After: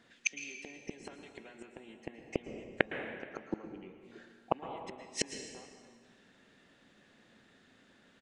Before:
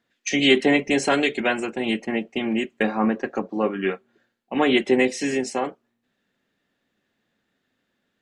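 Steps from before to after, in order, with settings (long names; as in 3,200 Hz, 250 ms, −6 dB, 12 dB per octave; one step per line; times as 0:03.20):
time-frequency box erased 0:03.65–0:04.11, 600–1,900 Hz
downward compressor 12 to 1, threshold −23 dBFS, peak gain reduction 12.5 dB
gate with flip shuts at −23 dBFS, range −36 dB
on a send at −6.5 dB: convolution reverb RT60 1.7 s, pre-delay 106 ms
on the sum: downsampling to 22,050 Hz
level +9.5 dB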